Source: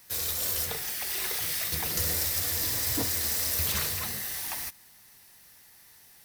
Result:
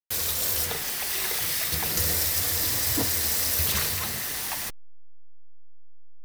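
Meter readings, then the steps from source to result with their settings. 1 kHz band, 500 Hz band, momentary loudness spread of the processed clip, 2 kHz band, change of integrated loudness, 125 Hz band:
+4.5 dB, +4.0 dB, 6 LU, +4.0 dB, +3.5 dB, +3.5 dB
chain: level-crossing sampler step -32 dBFS; gain +3.5 dB

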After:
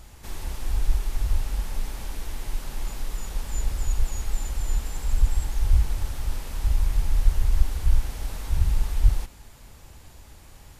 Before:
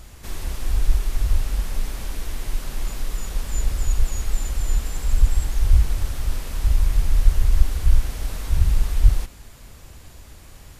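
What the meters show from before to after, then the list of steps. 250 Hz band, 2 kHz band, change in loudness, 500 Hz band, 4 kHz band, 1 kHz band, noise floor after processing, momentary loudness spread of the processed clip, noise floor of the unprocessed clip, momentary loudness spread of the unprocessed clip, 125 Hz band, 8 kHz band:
-4.0 dB, -4.0 dB, -4.0 dB, -4.0 dB, -4.0 dB, -2.0 dB, -48 dBFS, 11 LU, -44 dBFS, 11 LU, -4.0 dB, -4.0 dB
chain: bell 860 Hz +6 dB 0.22 oct; gain -4 dB

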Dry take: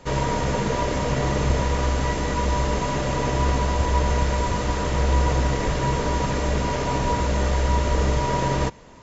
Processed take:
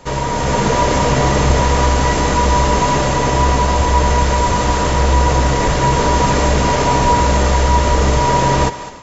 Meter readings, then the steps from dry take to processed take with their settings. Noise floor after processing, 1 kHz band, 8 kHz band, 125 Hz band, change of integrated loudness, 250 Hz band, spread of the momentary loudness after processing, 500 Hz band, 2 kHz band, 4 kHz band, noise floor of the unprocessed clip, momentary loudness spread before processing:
-20 dBFS, +11.5 dB, n/a, +7.0 dB, +9.0 dB, +7.5 dB, 2 LU, +8.5 dB, +9.0 dB, +10.0 dB, -26 dBFS, 2 LU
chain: bell 910 Hz +3.5 dB 1.1 oct; in parallel at -3 dB: limiter -18 dBFS, peak gain reduction 10 dB; on the sum: high shelf 4900 Hz +5.5 dB; thinning echo 0.204 s, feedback 41%, level -12.5 dB; AGC; gain -1 dB

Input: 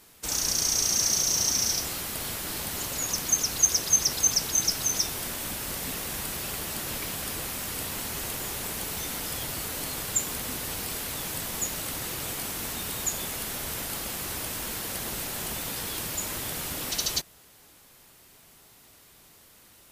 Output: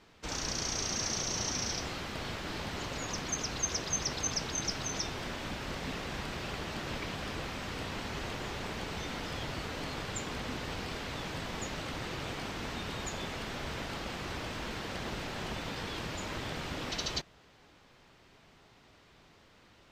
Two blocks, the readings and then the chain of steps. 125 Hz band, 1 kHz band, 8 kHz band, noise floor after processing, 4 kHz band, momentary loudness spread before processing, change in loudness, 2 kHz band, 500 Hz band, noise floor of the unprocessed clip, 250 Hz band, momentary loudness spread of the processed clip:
0.0 dB, -1.0 dB, -12.5 dB, -61 dBFS, -7.0 dB, 9 LU, -9.0 dB, -2.0 dB, -0.5 dB, -55 dBFS, 0.0 dB, 6 LU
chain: air absorption 180 m

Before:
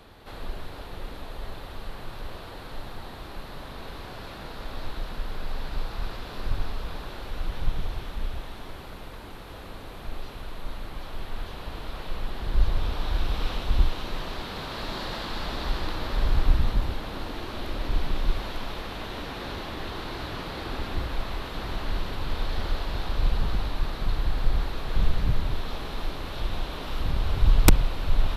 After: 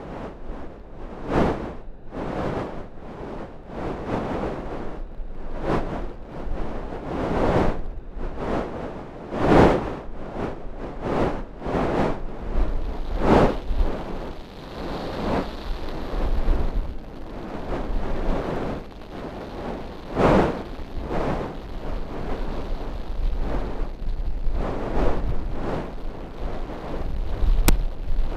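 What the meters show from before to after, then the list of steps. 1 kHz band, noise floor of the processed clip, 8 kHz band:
+8.0 dB, -38 dBFS, n/a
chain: Wiener smoothing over 41 samples; wind noise 570 Hz -26 dBFS; bell 95 Hz -5 dB 0.75 oct; gain -1 dB

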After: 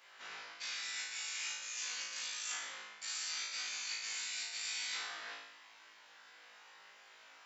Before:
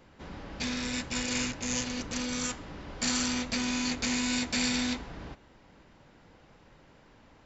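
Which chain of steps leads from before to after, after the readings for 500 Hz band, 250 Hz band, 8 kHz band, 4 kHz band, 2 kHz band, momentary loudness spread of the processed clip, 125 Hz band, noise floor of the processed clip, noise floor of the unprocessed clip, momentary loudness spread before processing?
-20.5 dB, under -40 dB, n/a, -6.0 dB, -6.5 dB, 20 LU, under -40 dB, -60 dBFS, -59 dBFS, 16 LU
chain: HPF 1400 Hz 12 dB/oct; reverse; compressor 6:1, threshold -46 dBFS, peak gain reduction 17.5 dB; reverse; flutter echo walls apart 3.2 m, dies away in 0.82 s; gain +1.5 dB

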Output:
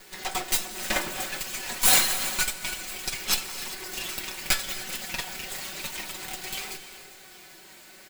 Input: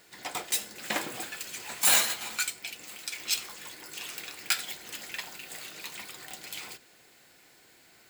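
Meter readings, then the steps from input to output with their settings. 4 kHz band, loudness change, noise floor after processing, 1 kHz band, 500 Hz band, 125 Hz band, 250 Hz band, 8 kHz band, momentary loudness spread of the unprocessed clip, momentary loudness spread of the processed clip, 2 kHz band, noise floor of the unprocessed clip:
+4.0 dB, +3.5 dB, -50 dBFS, +4.5 dB, +5.0 dB, +10.0 dB, +5.5 dB, +3.5 dB, 17 LU, 20 LU, +4.0 dB, -59 dBFS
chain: minimum comb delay 5.3 ms; in parallel at +0.5 dB: compressor, threshold -46 dBFS, peak gain reduction 24 dB; on the sum: flange 0.29 Hz, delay 2.2 ms, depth 2 ms, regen +73%; on a send: feedback echo 0.398 s, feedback 57%, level -18 dB; on the sum: non-linear reverb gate 0.32 s rising, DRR 11.5 dB; gain +8.5 dB

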